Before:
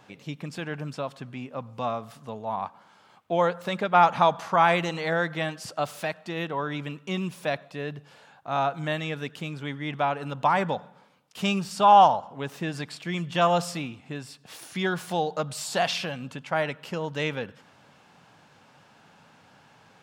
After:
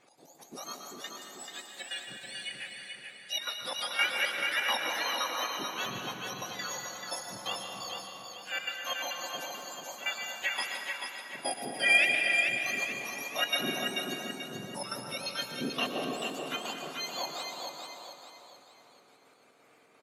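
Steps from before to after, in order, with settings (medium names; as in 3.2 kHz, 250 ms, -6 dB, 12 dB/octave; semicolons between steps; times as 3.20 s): spectrum inverted on a logarithmic axis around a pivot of 1.4 kHz; low-pass 8.3 kHz 12 dB/octave; tone controls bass -4 dB, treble +4 dB; in parallel at -11.5 dB: hard clipper -19.5 dBFS, distortion -11 dB; on the sum: trance gate "x.x.x.xxx." 173 bpm -12 dB; feedback delay 436 ms, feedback 41%, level -5 dB; on a send at -3 dB: reverberation RT60 2.4 s, pre-delay 108 ms; on the sum: trim -7 dB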